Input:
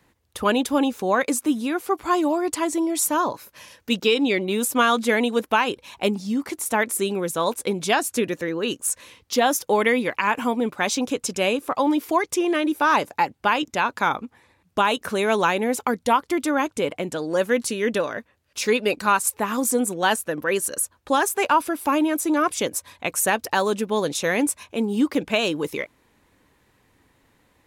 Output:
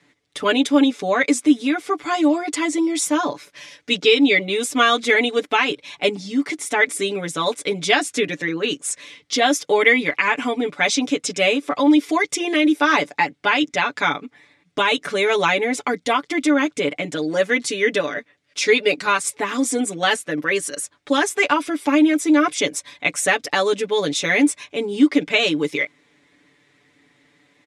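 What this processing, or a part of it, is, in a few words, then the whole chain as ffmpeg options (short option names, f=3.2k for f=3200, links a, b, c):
car door speaker: -filter_complex "[0:a]highpass=100,equalizer=f=110:t=q:w=4:g=-8,equalizer=f=300:t=q:w=4:g=3,equalizer=f=940:t=q:w=4:g=-6,equalizer=f=2.1k:t=q:w=4:g=9,equalizer=f=3.5k:t=q:w=4:g=6,equalizer=f=5.3k:t=q:w=4:g=3,lowpass=f=9k:w=0.5412,lowpass=f=9k:w=1.3066,aecho=1:1:6.9:0.98,asettb=1/sr,asplit=3[a][b][c];[a]atrim=end=11.924[d];[b]atrim=start=11.92:end=12.82,asetpts=PTS-STARTPTS,afade=t=in:d=0.004:c=qsin,afade=t=out:st=0.896:d=0.004:c=qsin,highshelf=f=7.7k:g=5.5[e];[c]atrim=start=12.816[f];[d][e]acrossfade=d=0.004:c1=hsin:c2=qsin[g];[g][f]acrossfade=d=0.004:c1=qsin:c2=hsin,volume=-1dB"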